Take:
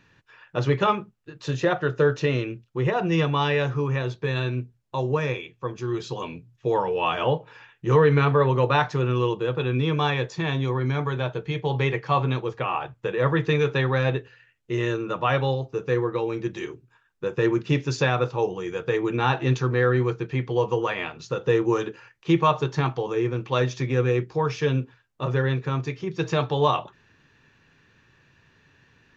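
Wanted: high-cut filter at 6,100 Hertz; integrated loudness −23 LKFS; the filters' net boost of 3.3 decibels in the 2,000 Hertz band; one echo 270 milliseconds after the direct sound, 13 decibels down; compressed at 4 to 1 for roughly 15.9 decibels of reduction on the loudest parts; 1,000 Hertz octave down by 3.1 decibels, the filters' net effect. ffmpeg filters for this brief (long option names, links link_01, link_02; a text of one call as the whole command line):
ffmpeg -i in.wav -af "lowpass=6100,equalizer=frequency=1000:width_type=o:gain=-5.5,equalizer=frequency=2000:width_type=o:gain=6,acompressor=threshold=-35dB:ratio=4,aecho=1:1:270:0.224,volume=14dB" out.wav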